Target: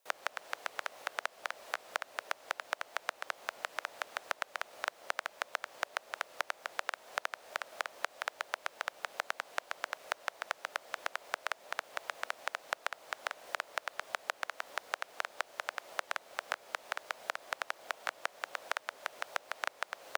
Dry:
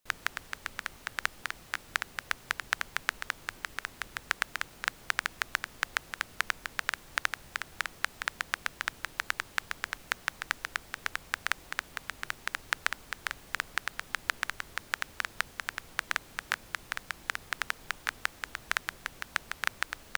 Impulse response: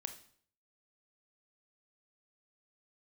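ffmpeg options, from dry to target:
-filter_complex "[0:a]acrossover=split=2600|7000[s0][s1][s2];[s0]acompressor=threshold=0.0126:ratio=4[s3];[s1]acompressor=threshold=0.00501:ratio=4[s4];[s2]acompressor=threshold=0.00112:ratio=4[s5];[s3][s4][s5]amix=inputs=3:normalize=0,highpass=f=720:t=q:w=3.5,afreqshift=-120,volume=1.19"

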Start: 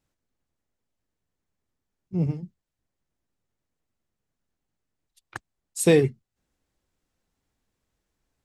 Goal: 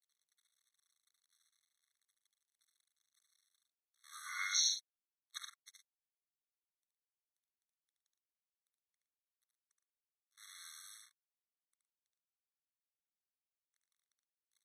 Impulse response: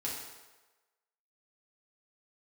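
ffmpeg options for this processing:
-filter_complex "[0:a]areverse,acrusher=bits=9:dc=4:mix=0:aa=0.000001,equalizer=f=2300:w=1.1:g=-13,asplit=2[s0][s1];[s1]aecho=0:1:42|66:0.668|0.335[s2];[s0][s2]amix=inputs=2:normalize=0,acompressor=threshold=0.0631:ratio=2,asetrate=25442,aresample=44100,afftfilt=real='re*eq(mod(floor(b*sr/1024/1100),2),1)':imag='im*eq(mod(floor(b*sr/1024/1100),2),1)':win_size=1024:overlap=0.75,volume=2.11"

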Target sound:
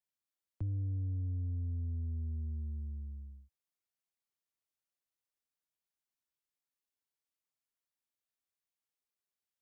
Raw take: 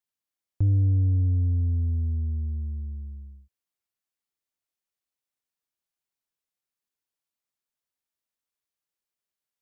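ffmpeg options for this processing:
-filter_complex "[0:a]acrossover=split=87|240[s0][s1][s2];[s0]acompressor=threshold=0.0141:ratio=4[s3];[s1]acompressor=threshold=0.0178:ratio=4[s4];[s2]acompressor=threshold=0.00282:ratio=4[s5];[s3][s4][s5]amix=inputs=3:normalize=0,volume=0.531"

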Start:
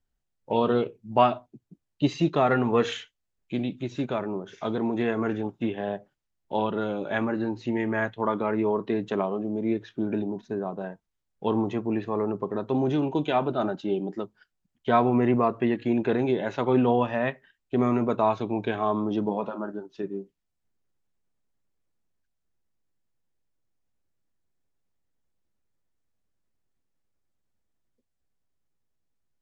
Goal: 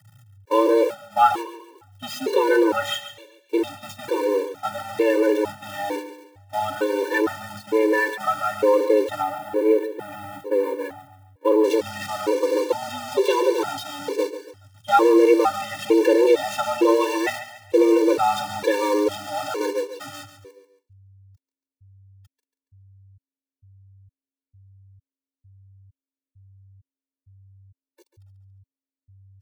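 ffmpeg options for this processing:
-af "aeval=exprs='val(0)+0.5*0.0398*sgn(val(0))':c=same,asetnsamples=n=441:p=0,asendcmd='9.22 equalizer g -12.5;11.64 equalizer g 4',equalizer=f=5400:t=o:w=1.7:g=-2.5,agate=range=0.0891:threshold=0.0355:ratio=16:detection=peak,afreqshift=97,aecho=1:1:2.2:0.92,aecho=1:1:140|280|420|560:0.251|0.0955|0.0363|0.0138,afftfilt=real='re*gt(sin(2*PI*1.1*pts/sr)*(1-2*mod(floor(b*sr/1024/300),2)),0)':imag='im*gt(sin(2*PI*1.1*pts/sr)*(1-2*mod(floor(b*sr/1024/300),2)),0)':win_size=1024:overlap=0.75,volume=1.33"

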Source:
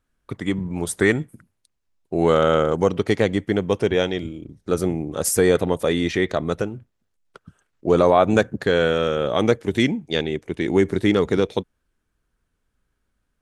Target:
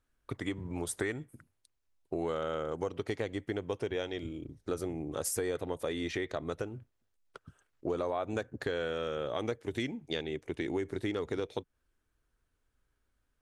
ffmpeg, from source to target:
-af "equalizer=f=190:w=4.4:g=-12,acompressor=threshold=0.0398:ratio=4,volume=0.596"

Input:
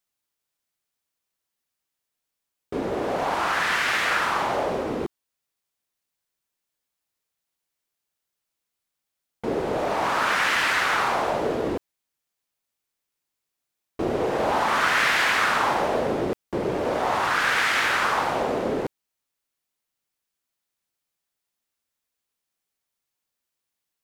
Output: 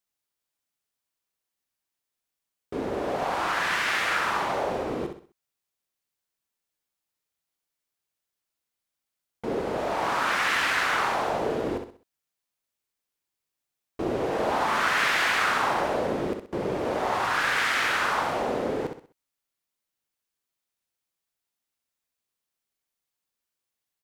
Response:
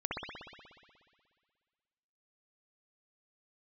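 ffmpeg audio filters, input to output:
-af "aecho=1:1:64|128|192|256:0.447|0.156|0.0547|0.0192,volume=0.668"

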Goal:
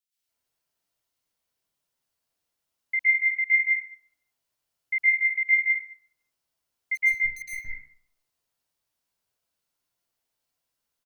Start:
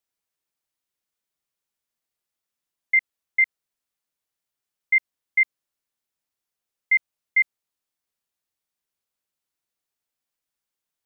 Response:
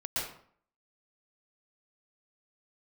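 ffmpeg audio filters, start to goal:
-filter_complex "[0:a]asplit=3[s0][s1][s2];[s0]afade=t=out:st=6.94:d=0.02[s3];[s1]aeval=exprs='(tanh(50.1*val(0)+0.8)-tanh(0.8))/50.1':c=same,afade=t=in:st=6.94:d=0.02,afade=t=out:st=7.41:d=0.02[s4];[s2]afade=t=in:st=7.41:d=0.02[s5];[s3][s4][s5]amix=inputs=3:normalize=0,acrossover=split=1900[s6][s7];[s6]adelay=170[s8];[s8][s7]amix=inputs=2:normalize=0[s9];[1:a]atrim=start_sample=2205[s10];[s9][s10]afir=irnorm=-1:irlink=0"

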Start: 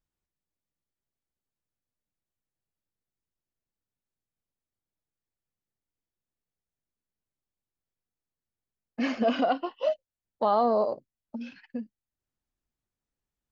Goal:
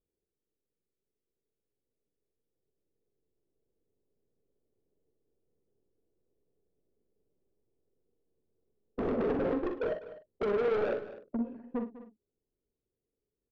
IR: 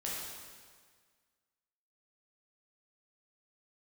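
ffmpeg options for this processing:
-filter_complex "[0:a]lowshelf=f=270:g=-3.5,alimiter=limit=0.0794:level=0:latency=1:release=446,dynaudnorm=f=310:g=21:m=3.98,aeval=exprs='(mod(8.91*val(0)+1,2)-1)/8.91':c=same,lowpass=f=430:t=q:w=4.9,asoftclip=type=tanh:threshold=0.0398,asplit=2[s0][s1];[s1]adelay=44,volume=0.376[s2];[s0][s2]amix=inputs=2:normalize=0,asplit=2[s3][s4];[s4]aecho=0:1:61|200|254:0.266|0.158|0.112[s5];[s3][s5]amix=inputs=2:normalize=0"

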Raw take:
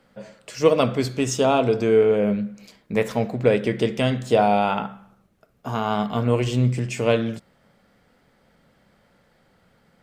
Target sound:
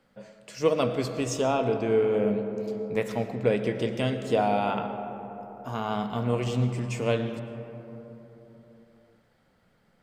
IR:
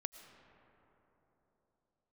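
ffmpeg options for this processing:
-filter_complex "[0:a]asettb=1/sr,asplit=3[s0][s1][s2];[s0]atrim=end=1.414[s3];[s1]atrim=start=1.41:end=2.04,asetpts=PTS-STARTPTS,afade=t=in:d=0.004:c=qsin,afade=t=out:st=0.626:d=0.004:c=qsin,acrossover=split=3700[s4][s5];[s5]acompressor=threshold=0.00316:ratio=4:attack=1:release=60[s6];[s4][s6]amix=inputs=2:normalize=0[s7];[s2]atrim=start=2.036[s8];[s3][s7]acrossfade=d=0.004:c1=hsin:c2=qsin[s9];[s9][s8]acrossfade=d=0.004:c1=qsin:c2=hsin[s10];[1:a]atrim=start_sample=2205[s11];[s10][s11]afir=irnorm=-1:irlink=0,volume=0.668"

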